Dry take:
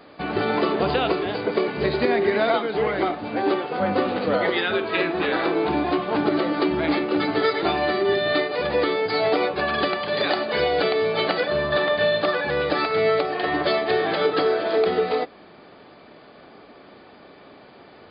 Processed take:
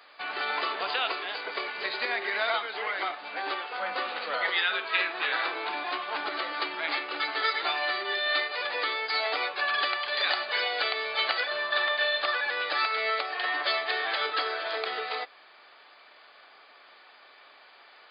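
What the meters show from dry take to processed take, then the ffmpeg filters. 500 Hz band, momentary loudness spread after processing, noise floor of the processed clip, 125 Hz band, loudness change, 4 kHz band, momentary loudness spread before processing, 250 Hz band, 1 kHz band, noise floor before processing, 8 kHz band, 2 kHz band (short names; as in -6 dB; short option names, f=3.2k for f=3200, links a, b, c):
-15.0 dB, 6 LU, -55 dBFS, under -35 dB, -6.0 dB, 0.0 dB, 3 LU, -23.5 dB, -5.5 dB, -48 dBFS, n/a, -1.0 dB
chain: -af "highpass=1.2k"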